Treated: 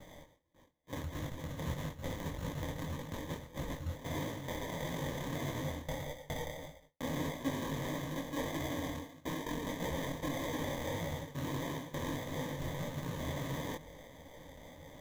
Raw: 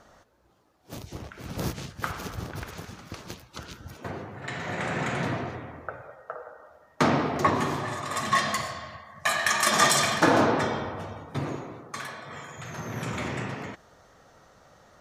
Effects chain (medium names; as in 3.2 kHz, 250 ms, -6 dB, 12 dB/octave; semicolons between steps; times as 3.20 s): peaking EQ 410 Hz -3 dB 1.3 oct; sample-and-hold 32×; reverse; compression 16:1, threshold -39 dBFS, peak gain reduction 24 dB; reverse; rippled EQ curve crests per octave 1.1, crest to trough 9 dB; gate with hold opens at -54 dBFS; detune thickener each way 56 cents; trim +7 dB